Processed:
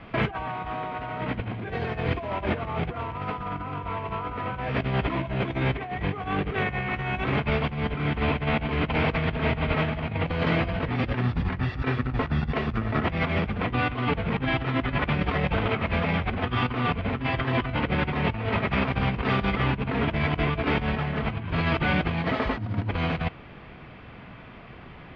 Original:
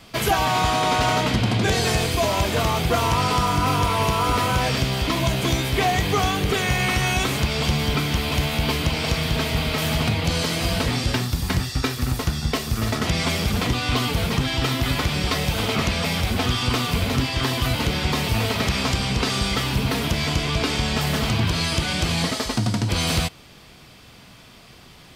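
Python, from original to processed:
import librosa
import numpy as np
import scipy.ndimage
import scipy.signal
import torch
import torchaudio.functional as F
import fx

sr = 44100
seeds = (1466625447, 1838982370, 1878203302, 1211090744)

y = scipy.signal.sosfilt(scipy.signal.butter(4, 2400.0, 'lowpass', fs=sr, output='sos'), x)
y = fx.over_compress(y, sr, threshold_db=-26.0, ratio=-0.5)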